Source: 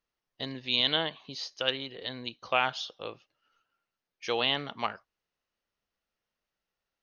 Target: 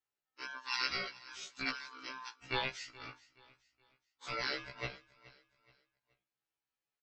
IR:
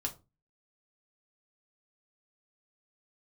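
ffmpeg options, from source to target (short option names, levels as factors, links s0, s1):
-filter_complex "[0:a]afftfilt=real='real(if(between(b,1,1008),(2*floor((b-1)/24)+1)*24-b,b),0)':imag='imag(if(between(b,1,1008),(2*floor((b-1)/24)+1)*24-b,b),0)*if(between(b,1,1008),-1,1)':win_size=2048:overlap=0.75,aecho=1:1:7:0.38,aeval=exprs='val(0)*sin(2*PI*1300*n/s)':c=same,asplit=2[s0][s1];[s1]aecho=0:1:424|848|1272:0.1|0.036|0.013[s2];[s0][s2]amix=inputs=2:normalize=0,afftfilt=real='re*1.73*eq(mod(b,3),0)':imag='im*1.73*eq(mod(b,3),0)':win_size=2048:overlap=0.75,volume=0.631"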